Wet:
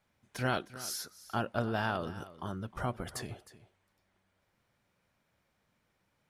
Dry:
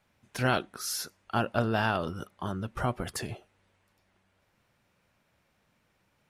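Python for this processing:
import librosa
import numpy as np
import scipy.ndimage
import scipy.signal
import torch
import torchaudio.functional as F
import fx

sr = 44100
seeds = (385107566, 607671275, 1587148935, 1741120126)

p1 = fx.notch(x, sr, hz=2700.0, q=17.0)
p2 = p1 + fx.echo_single(p1, sr, ms=311, db=-16.5, dry=0)
y = p2 * 10.0 ** (-5.0 / 20.0)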